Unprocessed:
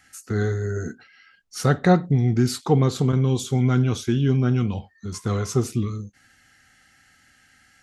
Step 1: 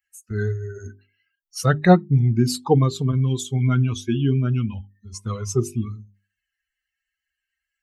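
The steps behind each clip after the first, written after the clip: expander on every frequency bin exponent 2; hum notches 50/100/150/200/250/300/350/400 Hz; trim +5 dB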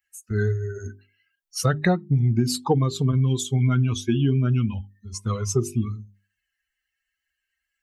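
compression 10:1, threshold -18 dBFS, peak gain reduction 12 dB; trim +2 dB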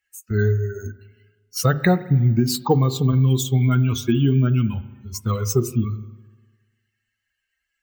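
spring tank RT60 1.3 s, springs 38/50 ms, chirp 60 ms, DRR 15 dB; careless resampling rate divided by 2×, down filtered, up hold; trim +3 dB

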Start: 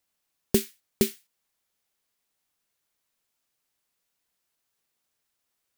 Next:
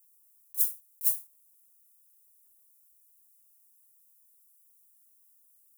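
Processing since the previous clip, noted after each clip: FFT filter 810 Hz 0 dB, 1.3 kHz +8 dB, 1.8 kHz -25 dB, 9.7 kHz +12 dB; compressor with a negative ratio -25 dBFS, ratio -0.5; pre-emphasis filter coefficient 0.97; trim -5 dB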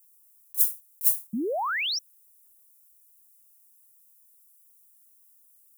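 painted sound rise, 1.33–1.99 s, 200–5900 Hz -32 dBFS; trim +4 dB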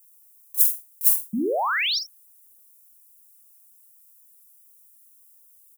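early reflections 47 ms -6.5 dB, 79 ms -17 dB; trim +3.5 dB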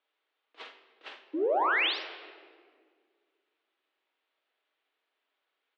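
partial rectifier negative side -3 dB; simulated room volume 2400 m³, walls mixed, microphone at 0.85 m; mistuned SSB +91 Hz 220–3500 Hz; trim -2 dB

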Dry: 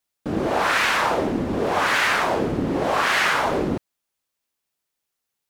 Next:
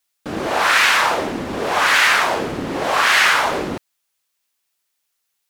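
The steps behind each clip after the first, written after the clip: tilt shelf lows -6 dB, about 720 Hz; trim +2 dB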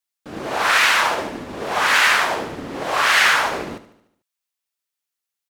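on a send: feedback delay 74 ms, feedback 54%, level -10 dB; on the sum: upward expansion 1.5:1, over -33 dBFS; trim -1 dB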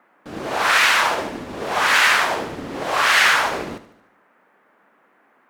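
band noise 200–1800 Hz -59 dBFS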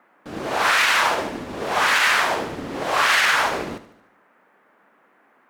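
peak limiter -8 dBFS, peak gain reduction 6 dB

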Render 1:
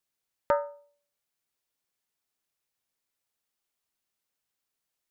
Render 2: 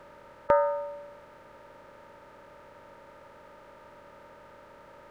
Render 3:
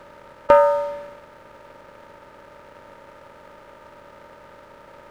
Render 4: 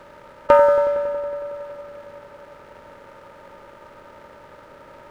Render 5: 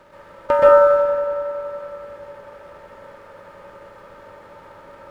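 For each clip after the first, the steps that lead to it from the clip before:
spectral levelling over time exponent 0.4; treble shelf 3 kHz -8.5 dB; trim +2.5 dB
waveshaping leveller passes 1; trim +6.5 dB
feedback echo behind a low-pass 92 ms, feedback 82%, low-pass 1.8 kHz, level -10 dB
reverberation RT60 0.40 s, pre-delay 117 ms, DRR -5.5 dB; trim -5 dB

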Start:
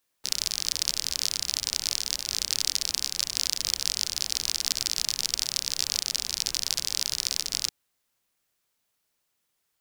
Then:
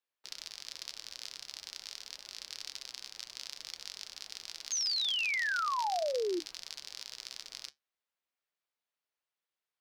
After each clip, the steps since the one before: three-band isolator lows -13 dB, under 360 Hz, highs -12 dB, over 4.5 kHz; painted sound fall, 4.71–6.40 s, 330–6600 Hz -21 dBFS; flange 0.48 Hz, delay 4 ms, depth 5.1 ms, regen -75%; trim -7 dB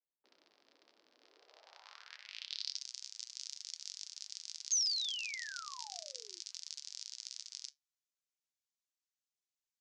three-band isolator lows -23 dB, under 340 Hz, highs -23 dB, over 7.8 kHz; band-pass sweep 250 Hz -> 6.9 kHz, 1.16–2.87 s; trim +6 dB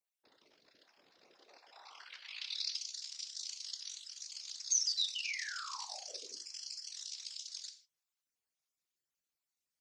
random holes in the spectrogram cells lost 37%; gated-style reverb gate 180 ms falling, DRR 6.5 dB; whisper effect; trim +3 dB

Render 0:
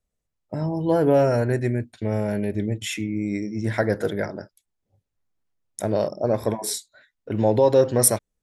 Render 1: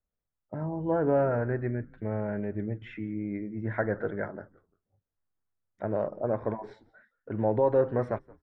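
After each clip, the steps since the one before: four-pole ladder low-pass 1.9 kHz, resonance 35%; frequency-shifting echo 172 ms, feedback 36%, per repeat -100 Hz, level -23 dB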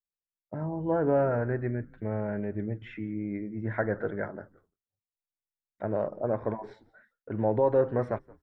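gate with hold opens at -56 dBFS

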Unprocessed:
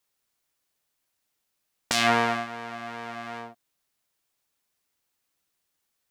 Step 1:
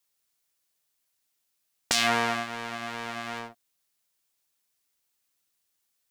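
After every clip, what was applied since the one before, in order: compression 1.5:1, threshold -28 dBFS, peak gain reduction 5 dB; treble shelf 2.7 kHz +7.5 dB; waveshaping leveller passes 1; trim -3 dB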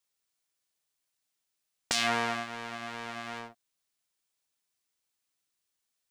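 peaking EQ 15 kHz -14 dB 0.32 oct; trim -4 dB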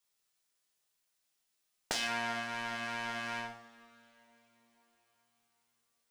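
compression 6:1, threshold -31 dBFS, peak gain reduction 9.5 dB; wavefolder -17.5 dBFS; reverberation, pre-delay 3 ms, DRR 1 dB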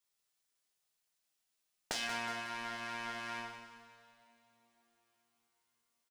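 feedback delay 183 ms, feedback 49%, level -9 dB; trim -3.5 dB

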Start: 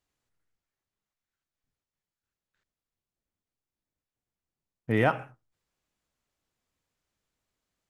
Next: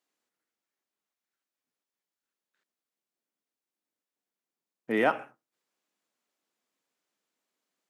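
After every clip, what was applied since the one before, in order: high-pass 220 Hz 24 dB/octave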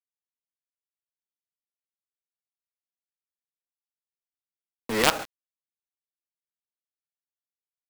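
in parallel at 0 dB: compression, threshold -31 dBFS, peak gain reduction 12 dB; on the sum: companded quantiser 2-bit; swell ahead of each attack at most 71 dB/s; trim -4.5 dB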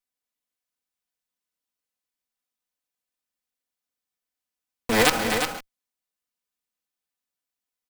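comb filter that takes the minimum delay 4 ms; peak limiter -9.5 dBFS, peak gain reduction 7 dB; multi-tap echo 250/354 ms -9.5/-7 dB; trim +7 dB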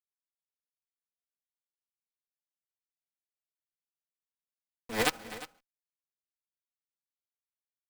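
upward expansion 2.5:1, over -33 dBFS; trim -7 dB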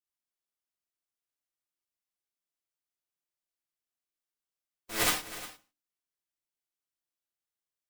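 spectral contrast reduction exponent 0.53; hum notches 50/100/150/200/250/300 Hz; gated-style reverb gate 140 ms falling, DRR -3.5 dB; trim -4 dB

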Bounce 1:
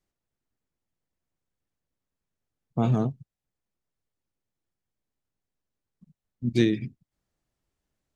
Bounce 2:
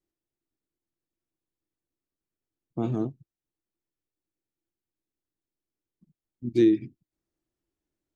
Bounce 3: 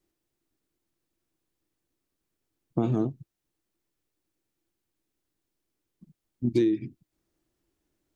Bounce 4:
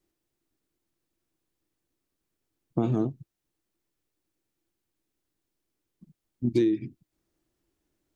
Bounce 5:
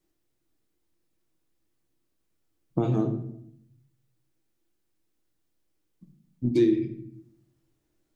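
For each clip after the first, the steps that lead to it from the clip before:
peaking EQ 330 Hz +14 dB 0.5 oct; trim -8 dB
compression 6:1, threshold -30 dBFS, peak gain reduction 13.5 dB; trim +8.5 dB
no audible change
simulated room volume 150 m³, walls mixed, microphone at 0.57 m

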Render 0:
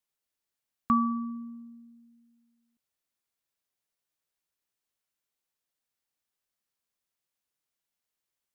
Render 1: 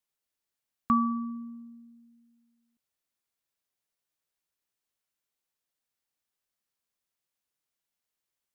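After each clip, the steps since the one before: no audible change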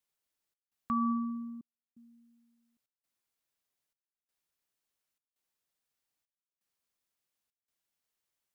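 peak limiter -23.5 dBFS, peak gain reduction 9 dB; trance gate "xxx.xxxxx..xx" 84 bpm -60 dB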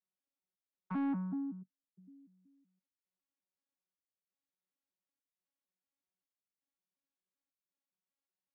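vocoder on a broken chord bare fifth, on F#3, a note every 188 ms; saturation -30.5 dBFS, distortion -13 dB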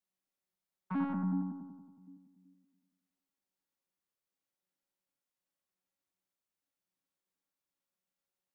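bucket-brigade echo 92 ms, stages 1024, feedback 63%, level -3.5 dB; on a send at -18 dB: reverberation, pre-delay 6 ms; on the sum: trim +1.5 dB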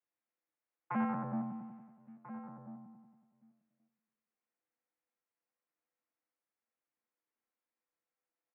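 waveshaping leveller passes 1; mistuned SSB -53 Hz 300–2500 Hz; echo from a far wall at 230 m, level -12 dB; trim +2.5 dB

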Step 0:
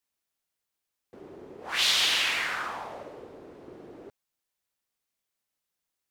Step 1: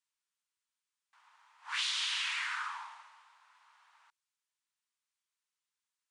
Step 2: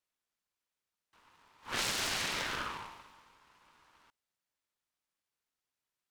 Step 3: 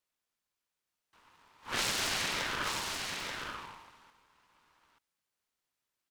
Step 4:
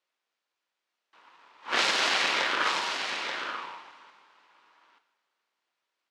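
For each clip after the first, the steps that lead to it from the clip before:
compression, threshold -27 dBFS, peak gain reduction 7.5 dB; Chebyshev band-pass 920–9700 Hz, order 5; trim -3.5 dB
delay time shaken by noise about 1.3 kHz, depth 0.074 ms
delay 883 ms -5 dB; trim +1.5 dB
in parallel at -10 dB: bit crusher 5-bit; on the sum: band-pass 360–4300 Hz; reverberation, pre-delay 3 ms, DRR 8 dB; trim +6.5 dB

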